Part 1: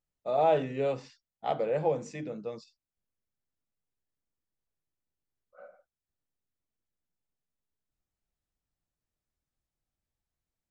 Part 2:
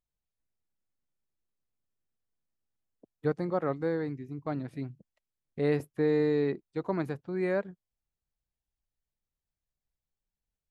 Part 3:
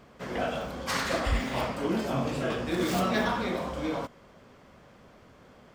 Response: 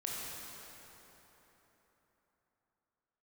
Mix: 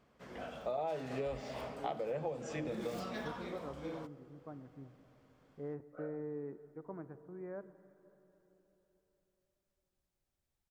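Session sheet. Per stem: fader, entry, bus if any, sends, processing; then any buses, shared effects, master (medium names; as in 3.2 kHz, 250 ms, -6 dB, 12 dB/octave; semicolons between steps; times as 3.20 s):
+0.5 dB, 0.40 s, send -16.5 dB, none
-16.5 dB, 0.00 s, send -13.5 dB, low-pass 1.5 kHz 24 dB/octave
-15.0 dB, 0.00 s, no send, none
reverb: on, RT60 3.9 s, pre-delay 18 ms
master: compression 8:1, threshold -35 dBFS, peak gain reduction 16 dB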